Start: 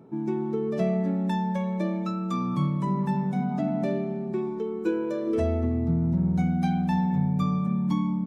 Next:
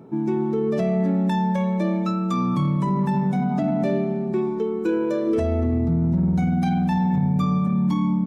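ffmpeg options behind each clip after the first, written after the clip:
-af "alimiter=limit=0.0944:level=0:latency=1:release=14,volume=2"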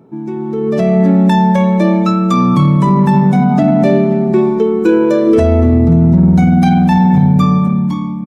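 -af "dynaudnorm=f=110:g=13:m=5.01,aecho=1:1:532:0.0944"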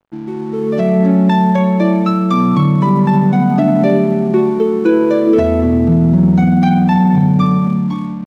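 -af "highpass=110,lowpass=4500,aeval=exprs='sgn(val(0))*max(abs(val(0))-0.0112,0)':c=same,volume=0.891"

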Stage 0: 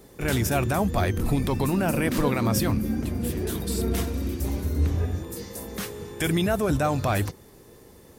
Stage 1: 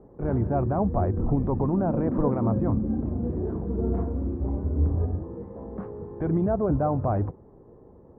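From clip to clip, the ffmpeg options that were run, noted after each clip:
-af "lowpass=f=1000:w=0.5412,lowpass=f=1000:w=1.3066"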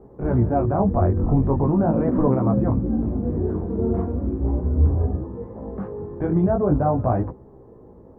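-af "flanger=delay=15:depth=7.4:speed=0.4,volume=2.37"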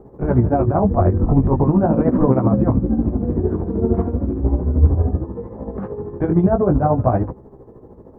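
-af "tremolo=f=13:d=0.59,volume=2.11"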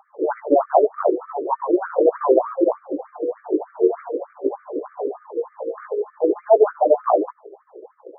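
-af "afftfilt=real='re*between(b*sr/1024,410*pow(1700/410,0.5+0.5*sin(2*PI*3.3*pts/sr))/1.41,410*pow(1700/410,0.5+0.5*sin(2*PI*3.3*pts/sr))*1.41)':imag='im*between(b*sr/1024,410*pow(1700/410,0.5+0.5*sin(2*PI*3.3*pts/sr))/1.41,410*pow(1700/410,0.5+0.5*sin(2*PI*3.3*pts/sr))*1.41)':win_size=1024:overlap=0.75,volume=2.24"

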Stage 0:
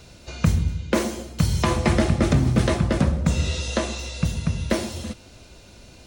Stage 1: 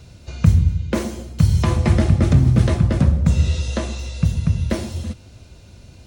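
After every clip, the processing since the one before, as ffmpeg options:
-af "equalizer=f=93:t=o:w=2:g=11.5,volume=0.708"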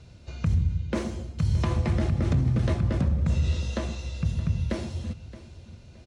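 -af "alimiter=limit=0.316:level=0:latency=1:release=47,adynamicsmooth=sensitivity=1:basefreq=7900,aecho=1:1:621|1242|1863:0.15|0.0449|0.0135,volume=0.501"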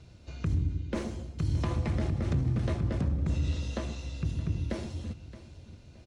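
-filter_complex "[0:a]asplit=2[s0][s1];[s1]asoftclip=type=tanh:threshold=0.0251,volume=0.282[s2];[s0][s2]amix=inputs=2:normalize=0,tremolo=f=210:d=0.462,volume=0.668"

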